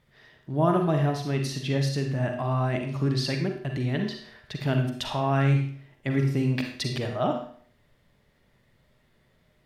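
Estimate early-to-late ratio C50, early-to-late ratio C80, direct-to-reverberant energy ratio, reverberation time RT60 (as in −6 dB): 5.0 dB, 9.0 dB, 3.0 dB, 0.55 s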